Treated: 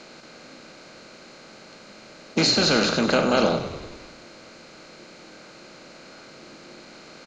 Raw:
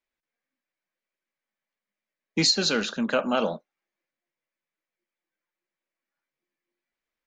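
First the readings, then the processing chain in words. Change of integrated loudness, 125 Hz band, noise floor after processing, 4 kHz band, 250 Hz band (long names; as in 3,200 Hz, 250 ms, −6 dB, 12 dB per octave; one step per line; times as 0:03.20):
+3.5 dB, +6.5 dB, −47 dBFS, +3.0 dB, +4.5 dB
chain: compressor on every frequency bin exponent 0.4
high-shelf EQ 7,600 Hz −10.5 dB
on a send: echo with shifted repeats 98 ms, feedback 62%, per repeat −41 Hz, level −11 dB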